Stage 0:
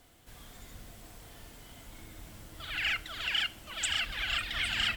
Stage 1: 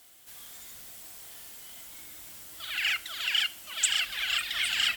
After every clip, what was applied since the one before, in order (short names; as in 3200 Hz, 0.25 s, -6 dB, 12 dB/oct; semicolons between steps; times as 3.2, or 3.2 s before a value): tilt +3.5 dB/oct; gain -1.5 dB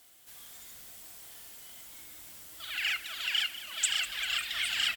feedback echo 0.197 s, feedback 59%, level -14.5 dB; gain -3 dB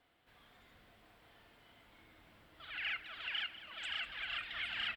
air absorption 470 m; gain -1.5 dB